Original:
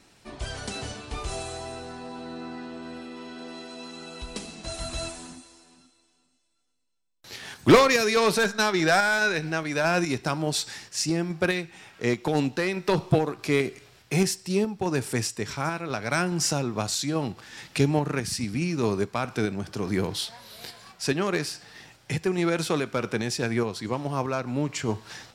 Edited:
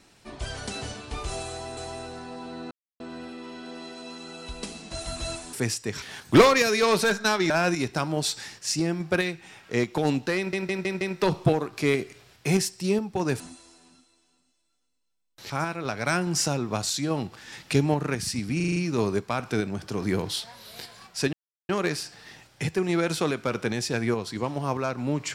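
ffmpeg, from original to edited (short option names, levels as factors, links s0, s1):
-filter_complex "[0:a]asplit=19[s0][s1][s2][s3][s4][s5][s6][s7][s8][s9][s10][s11][s12][s13][s14][s15][s16][s17][s18];[s0]atrim=end=1.772[s19];[s1]atrim=start=1.498:end=2.44,asetpts=PTS-STARTPTS,afade=t=out:st=0.938:d=0.004:c=hsin[s20];[s2]atrim=start=2.44:end=2.73,asetpts=PTS-STARTPTS,volume=0[s21];[s3]atrim=start=2.73:end=5.262,asetpts=PTS-STARTPTS,afade=t=in:d=0.004:c=hsin[s22];[s4]atrim=start=15.058:end=15.552[s23];[s5]atrim=start=7.358:end=8.842[s24];[s6]atrim=start=9.798:end=12.832[s25];[s7]atrim=start=12.668:end=12.832[s26];[s8]atrim=start=12.668:end=12.832[s27];[s9]atrim=start=12.668:end=12.832[s28];[s10]atrim=start=12.668:end=15.062[s29];[s11]atrim=start=5.258:end=7.362[s30];[s12]atrim=start=15.548:end=18.652[s31];[s13]atrim=start=18.608:end=18.652[s32];[s14]atrim=start=18.608:end=18.652[s33];[s15]atrim=start=18.608:end=18.652[s34];[s16]atrim=start=18.608:end=18.652[s35];[s17]atrim=start=18.608:end=21.18,asetpts=PTS-STARTPTS,afade=t=out:st=2.568:d=0.004:c=hsin,apad=pad_dur=0.36[s36];[s18]atrim=start=21.18,asetpts=PTS-STARTPTS,afade=t=in:d=0.004:c=hsin[s37];[s20][s21][s22]concat=n=3:v=0:a=1[s38];[s19][s38]acrossfade=d=0.004:c1=hsin:c2=hsin[s39];[s39][s23]acrossfade=d=0.004:c1=hsin:c2=hsin[s40];[s40][s24]acrossfade=d=0.004:c1=hsin:c2=hsin[s41];[s41][s25]acrossfade=d=0.004:c1=hsin:c2=hsin[s42];[s42][s26]acrossfade=d=0.004:c1=hsin:c2=hsin[s43];[s43][s27]acrossfade=d=0.004:c1=hsin:c2=hsin[s44];[s44][s28]acrossfade=d=0.004:c1=hsin:c2=hsin[s45];[s45][s29]acrossfade=d=0.004:c1=hsin:c2=hsin[s46];[s46][s30]acrossfade=d=0.004:c1=hsin:c2=hsin[s47];[s47][s31]acrossfade=d=0.004:c1=hsin:c2=hsin[s48];[s48][s32]acrossfade=d=0.004:c1=hsin:c2=hsin[s49];[s49][s33]acrossfade=d=0.004:c1=hsin:c2=hsin[s50];[s50][s34]acrossfade=d=0.004:c1=hsin:c2=hsin[s51];[s51][s35]acrossfade=d=0.004:c1=hsin:c2=hsin[s52];[s36][s37]concat=n=2:v=0:a=1[s53];[s52][s53]acrossfade=d=0.004:c1=hsin:c2=hsin"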